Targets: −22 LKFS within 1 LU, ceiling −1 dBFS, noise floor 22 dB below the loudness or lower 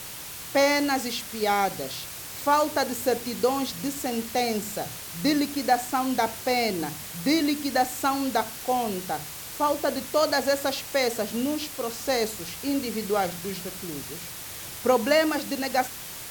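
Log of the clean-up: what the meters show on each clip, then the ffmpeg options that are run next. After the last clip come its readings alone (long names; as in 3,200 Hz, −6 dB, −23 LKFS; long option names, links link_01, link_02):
background noise floor −39 dBFS; target noise floor −49 dBFS; integrated loudness −26.5 LKFS; sample peak −9.0 dBFS; target loudness −22.0 LKFS
→ -af "afftdn=noise_reduction=10:noise_floor=-39"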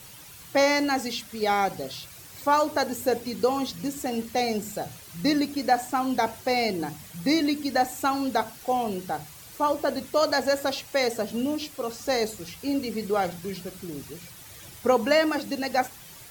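background noise floor −46 dBFS; target noise floor −49 dBFS
→ -af "afftdn=noise_reduction=6:noise_floor=-46"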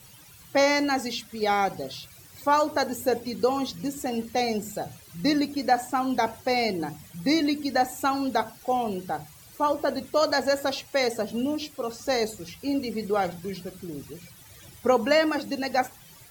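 background noise floor −51 dBFS; integrated loudness −26.5 LKFS; sample peak −9.0 dBFS; target loudness −22.0 LKFS
→ -af "volume=4.5dB"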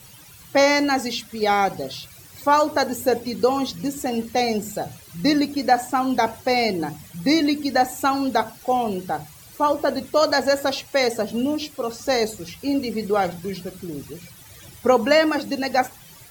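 integrated loudness −22.0 LKFS; sample peak −4.5 dBFS; background noise floor −46 dBFS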